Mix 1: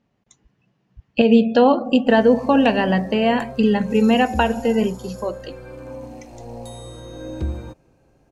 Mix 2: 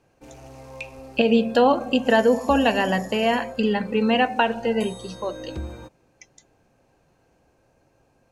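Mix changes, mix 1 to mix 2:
background: entry −1.85 s
master: add low-shelf EQ 390 Hz −8 dB

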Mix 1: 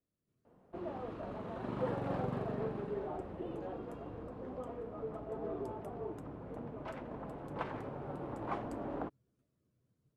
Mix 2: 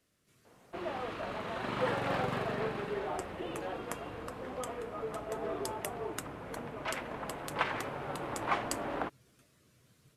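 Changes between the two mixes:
speech +10.5 dB
master: remove drawn EQ curve 280 Hz 0 dB, 950 Hz −7 dB, 2,100 Hz −16 dB

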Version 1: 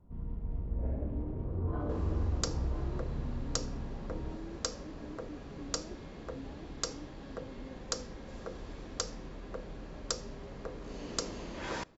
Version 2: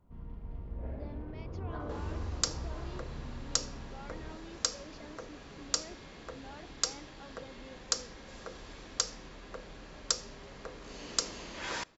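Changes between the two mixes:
speech: remove resonant band-pass 280 Hz, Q 1.5
master: add tilt shelving filter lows −6 dB, about 940 Hz

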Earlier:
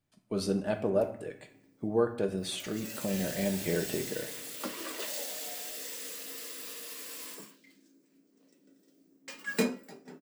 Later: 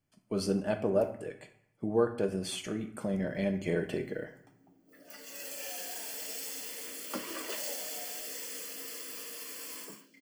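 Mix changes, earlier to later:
background: entry +2.50 s
master: add Butterworth band-reject 3,800 Hz, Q 7

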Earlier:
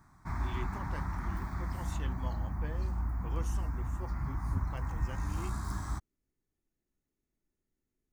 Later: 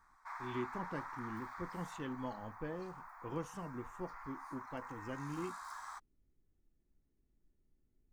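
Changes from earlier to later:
background: add inverse Chebyshev high-pass filter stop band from 200 Hz, stop band 70 dB
master: add spectral tilt −2.5 dB per octave

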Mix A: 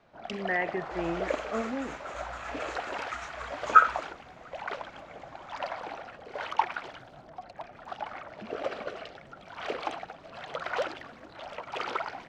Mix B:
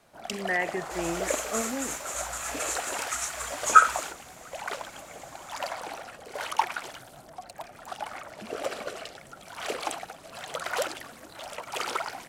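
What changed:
second sound: add high-shelf EQ 5,000 Hz +7.5 dB
master: remove high-frequency loss of the air 220 metres

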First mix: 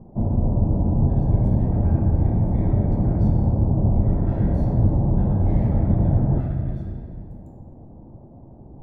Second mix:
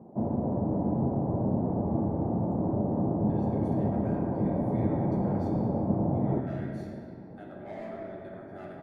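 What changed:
speech: entry +2.20 s
background: add high-pass filter 230 Hz 12 dB per octave

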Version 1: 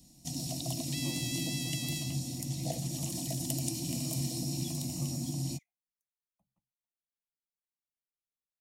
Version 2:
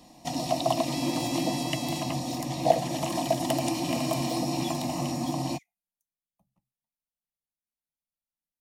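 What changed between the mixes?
speech +9.0 dB
first sound: remove drawn EQ curve 140 Hz 0 dB, 1,100 Hz −26 dB, 7,300 Hz +2 dB

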